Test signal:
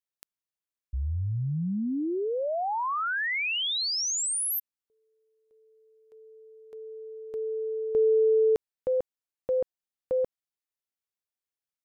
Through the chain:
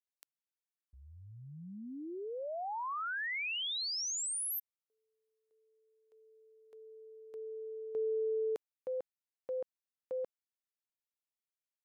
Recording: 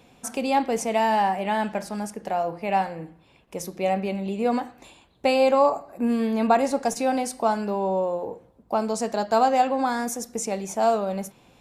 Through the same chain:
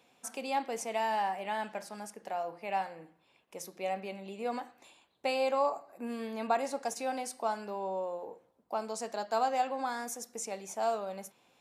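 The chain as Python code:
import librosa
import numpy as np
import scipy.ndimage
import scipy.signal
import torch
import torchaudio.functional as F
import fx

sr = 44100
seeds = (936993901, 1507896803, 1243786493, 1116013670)

y = fx.highpass(x, sr, hz=550.0, slope=6)
y = F.gain(torch.from_numpy(y), -8.0).numpy()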